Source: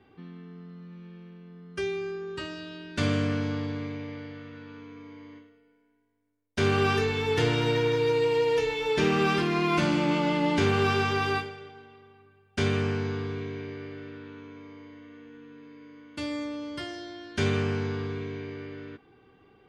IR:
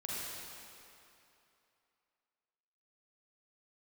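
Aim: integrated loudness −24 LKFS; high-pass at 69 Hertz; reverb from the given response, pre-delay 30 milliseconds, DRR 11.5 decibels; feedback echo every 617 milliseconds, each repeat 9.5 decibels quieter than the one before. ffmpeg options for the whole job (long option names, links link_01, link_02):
-filter_complex "[0:a]highpass=69,aecho=1:1:617|1234|1851|2468:0.335|0.111|0.0365|0.012,asplit=2[link_01][link_02];[1:a]atrim=start_sample=2205,adelay=30[link_03];[link_02][link_03]afir=irnorm=-1:irlink=0,volume=-14dB[link_04];[link_01][link_04]amix=inputs=2:normalize=0,volume=3.5dB"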